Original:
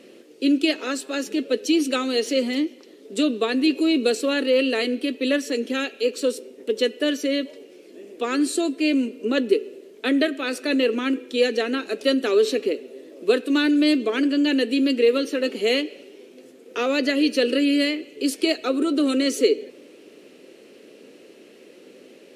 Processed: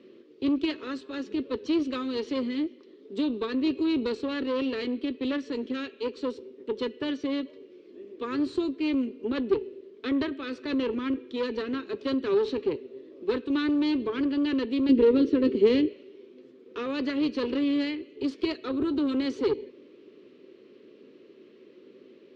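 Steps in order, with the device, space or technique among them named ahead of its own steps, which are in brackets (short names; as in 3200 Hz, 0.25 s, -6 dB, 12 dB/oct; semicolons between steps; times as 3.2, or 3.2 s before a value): guitar amplifier (tube stage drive 17 dB, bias 0.6; tone controls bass +13 dB, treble +14 dB; speaker cabinet 100–3400 Hz, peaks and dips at 170 Hz -6 dB, 380 Hz +8 dB, 750 Hz -8 dB, 1100 Hz +8 dB, 2700 Hz -4 dB); 14.89–15.92 resonant low shelf 550 Hz +8 dB, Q 1.5; gain -8 dB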